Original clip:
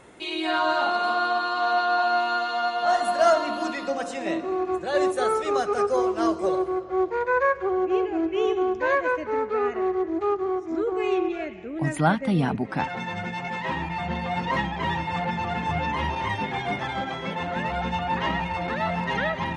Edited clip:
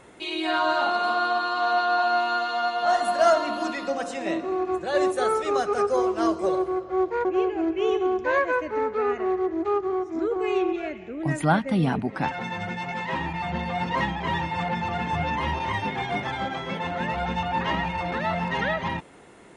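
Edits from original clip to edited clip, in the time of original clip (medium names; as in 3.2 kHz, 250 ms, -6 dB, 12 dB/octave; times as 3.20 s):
7.25–7.81 s: delete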